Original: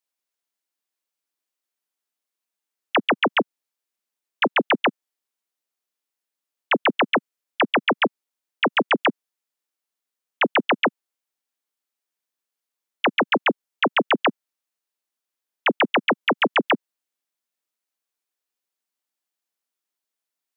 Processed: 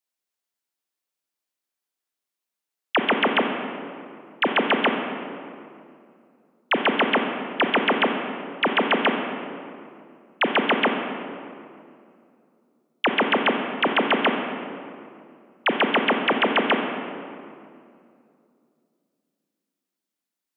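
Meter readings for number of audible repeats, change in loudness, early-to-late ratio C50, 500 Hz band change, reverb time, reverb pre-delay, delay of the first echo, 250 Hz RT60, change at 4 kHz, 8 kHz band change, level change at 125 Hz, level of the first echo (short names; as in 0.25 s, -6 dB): none, -1.0 dB, 5.0 dB, +0.5 dB, 2.5 s, 24 ms, none, 3.1 s, 0.0 dB, n/a, +1.0 dB, none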